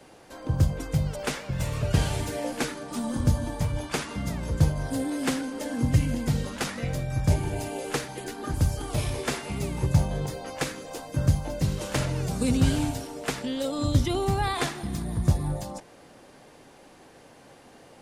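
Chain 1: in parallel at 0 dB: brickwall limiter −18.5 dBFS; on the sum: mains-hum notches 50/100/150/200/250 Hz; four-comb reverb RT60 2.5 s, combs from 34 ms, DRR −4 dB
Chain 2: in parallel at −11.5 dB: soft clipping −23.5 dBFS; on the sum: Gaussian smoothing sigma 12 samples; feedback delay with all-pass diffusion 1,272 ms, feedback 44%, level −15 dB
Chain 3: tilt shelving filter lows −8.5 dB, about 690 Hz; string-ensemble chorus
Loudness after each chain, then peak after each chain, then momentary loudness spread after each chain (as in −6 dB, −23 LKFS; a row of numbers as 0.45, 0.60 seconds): −18.5, −28.0, −31.5 LKFS; −1.0, −9.0, −12.0 dBFS; 5, 16, 22 LU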